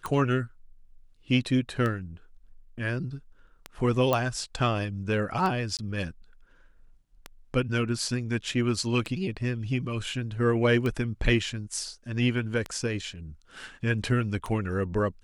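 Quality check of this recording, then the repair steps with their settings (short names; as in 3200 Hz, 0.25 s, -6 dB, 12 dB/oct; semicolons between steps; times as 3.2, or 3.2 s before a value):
tick 33 1/3 rpm -18 dBFS
4.13 pop -11 dBFS
5.77–5.79 gap 18 ms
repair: de-click; interpolate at 5.77, 18 ms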